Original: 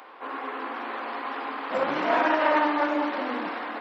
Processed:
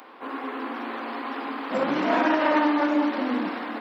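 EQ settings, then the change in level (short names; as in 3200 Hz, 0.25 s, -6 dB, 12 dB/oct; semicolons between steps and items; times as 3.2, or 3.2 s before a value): bell 230 Hz +11 dB 1.3 oct; high shelf 4200 Hz +8 dB; -2.0 dB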